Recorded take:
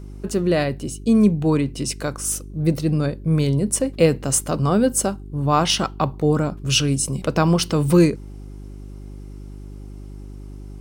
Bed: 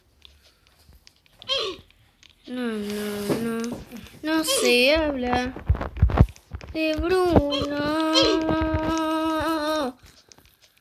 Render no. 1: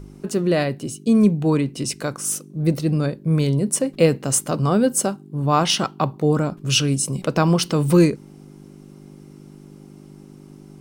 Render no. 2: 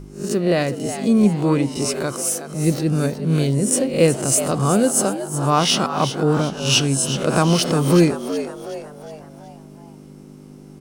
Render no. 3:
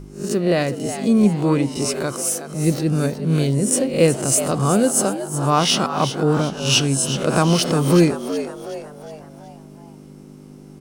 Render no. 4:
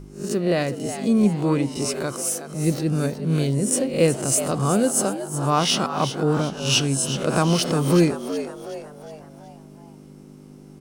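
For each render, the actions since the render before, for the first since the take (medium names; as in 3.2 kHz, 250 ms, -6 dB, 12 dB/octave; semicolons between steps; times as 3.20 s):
de-hum 50 Hz, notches 2
reverse spectral sustain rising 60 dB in 0.40 s; on a send: frequency-shifting echo 370 ms, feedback 46%, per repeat +100 Hz, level -11 dB
no audible change
trim -3 dB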